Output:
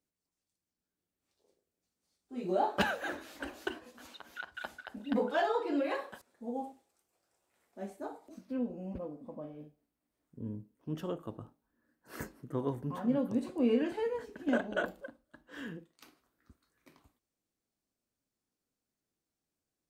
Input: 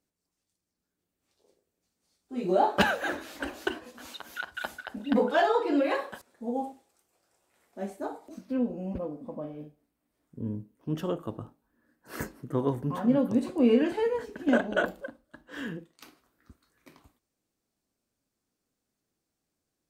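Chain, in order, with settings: 4.06–4.85 s: treble shelf 5.2 kHz -> 10 kHz -8.5 dB; trim -6.5 dB

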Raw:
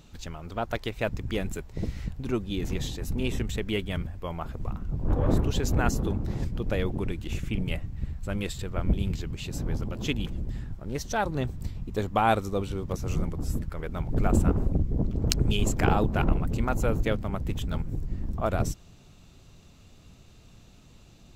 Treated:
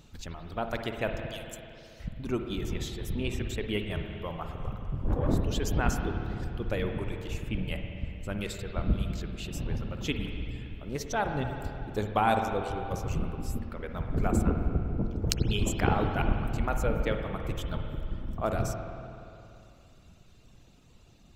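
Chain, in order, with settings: reverb removal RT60 1.6 s; 1.26–2.00 s: steep high-pass 2.7 kHz; spring tank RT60 2.8 s, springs 48/57 ms, chirp 45 ms, DRR 4 dB; trim -2 dB

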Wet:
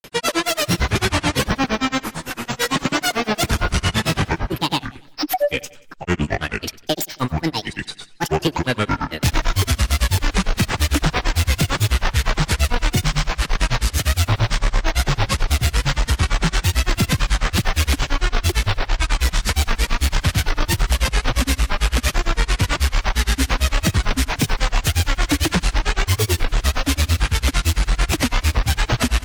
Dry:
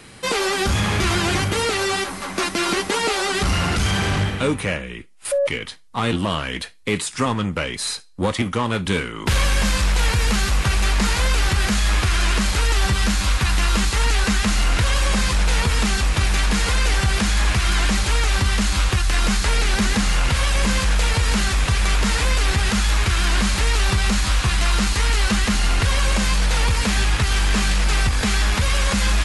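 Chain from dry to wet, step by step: granulator, grains 8.9 per s, pitch spread up and down by 12 st; saturation -17.5 dBFS, distortion -14 dB; on a send: feedback delay 91 ms, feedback 48%, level -20.5 dB; on the sum: warped record 33 1/3 rpm, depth 160 cents; trim +7 dB

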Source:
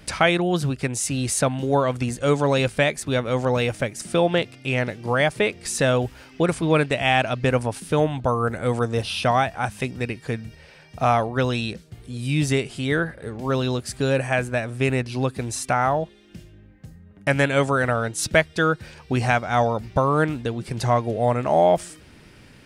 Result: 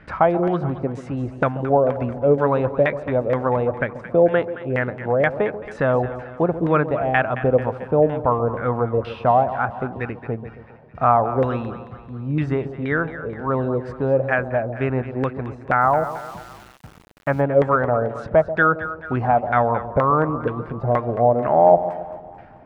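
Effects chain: LFO low-pass saw down 2.1 Hz 470–1800 Hz; two-band feedback delay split 880 Hz, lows 136 ms, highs 220 ms, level -12 dB; 15.81–17.41 s: small samples zeroed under -39.5 dBFS; trim -1 dB

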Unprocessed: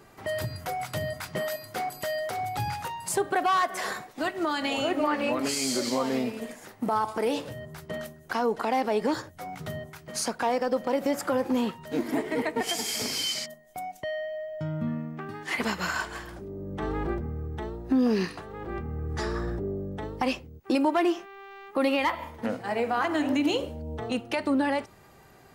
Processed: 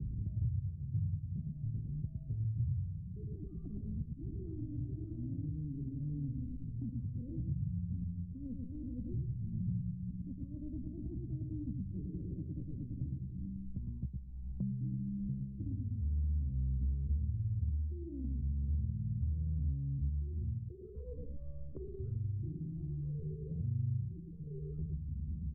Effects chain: pitch bend over the whole clip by +7.5 st starting unshifted; reverse; compression 5:1, threshold -35 dBFS, peak gain reduction 13.5 dB; reverse; inverse Chebyshev low-pass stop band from 760 Hz, stop band 70 dB; peaking EQ 65 Hz +14.5 dB 0.74 oct; on a send: delay 109 ms -3.5 dB; on the sum: three bands compressed up and down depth 100%; trim +6 dB

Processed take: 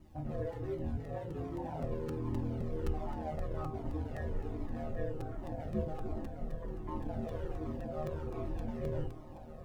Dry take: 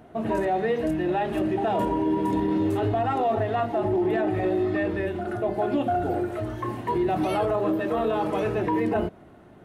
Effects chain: FDN reverb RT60 0.32 s, low-frequency decay 0.85×, high-frequency decay 0.85×, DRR 13.5 dB; in parallel at -9.5 dB: integer overflow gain 20.5 dB; on the sum: added noise white -45 dBFS; chord resonator G3 minor, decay 0.23 s; on a send: echo that smears into a reverb 1312 ms, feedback 53%, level -11 dB; on the sum: ring modulator 79 Hz; 0.97–1.84 s: frequency shift +37 Hz; tilt EQ -4.5 dB/octave; crackling interface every 0.26 s, samples 256, repeat, from 0.52 s; Shepard-style flanger falling 1.3 Hz; trim +1 dB

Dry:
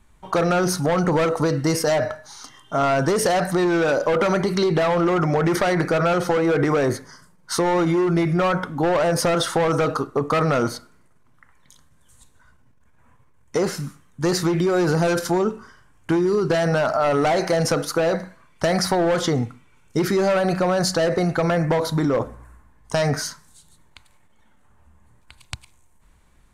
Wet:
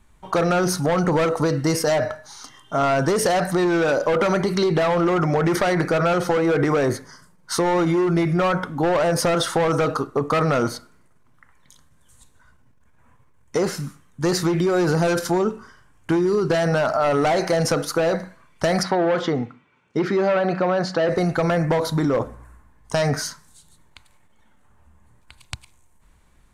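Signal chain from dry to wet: 18.83–21.09 s: band-pass 170–3200 Hz

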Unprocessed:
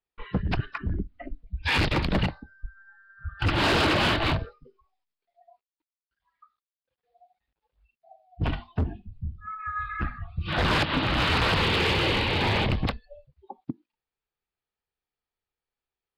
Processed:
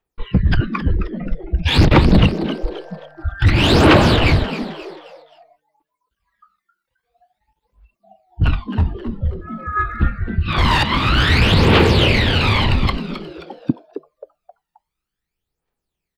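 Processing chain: phaser 0.51 Hz, delay 1.1 ms, feedback 69%; frequency-shifting echo 265 ms, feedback 39%, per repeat +150 Hz, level -11.5 dB; trim +5 dB

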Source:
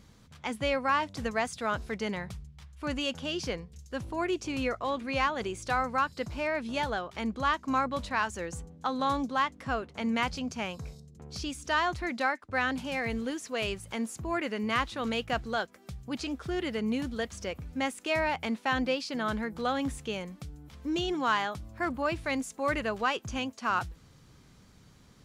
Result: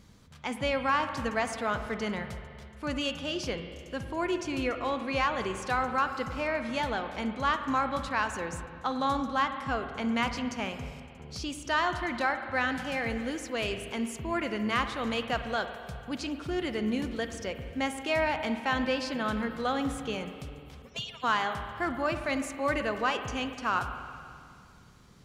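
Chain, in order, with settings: 20.82–21.24 s: harmonic-percussive separation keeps percussive; spring tank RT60 2.3 s, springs 47/52 ms, chirp 20 ms, DRR 7.5 dB

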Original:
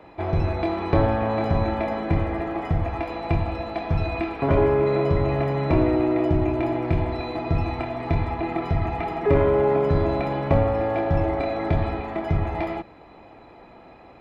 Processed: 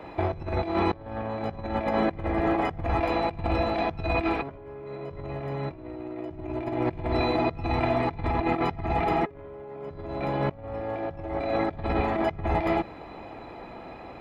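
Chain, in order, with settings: compressor with a negative ratio -28 dBFS, ratio -0.5

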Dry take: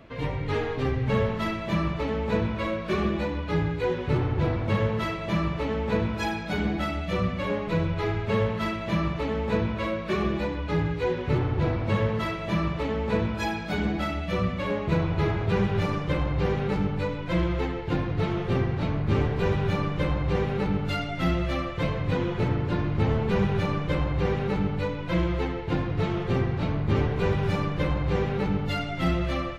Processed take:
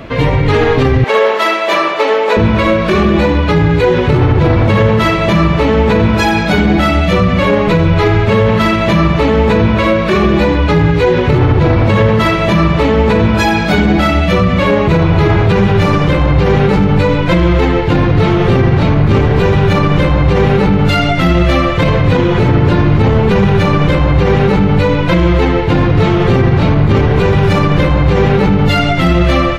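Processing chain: 1.04–2.37 s: high-pass 410 Hz 24 dB/octave; loudness maximiser +21.5 dB; trim -1 dB

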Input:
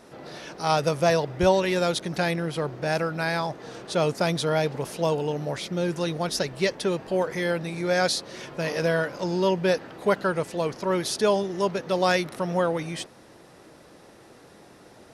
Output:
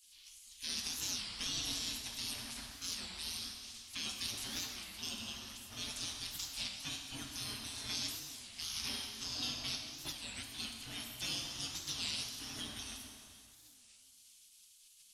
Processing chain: spectral gate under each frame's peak -25 dB weak; high-order bell 890 Hz -12 dB 2.9 oct; peak limiter -29.5 dBFS, peak gain reduction 10 dB; plate-style reverb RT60 2.5 s, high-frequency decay 0.85×, DRR 1.5 dB; warped record 33 1/3 rpm, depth 250 cents; trim +2.5 dB

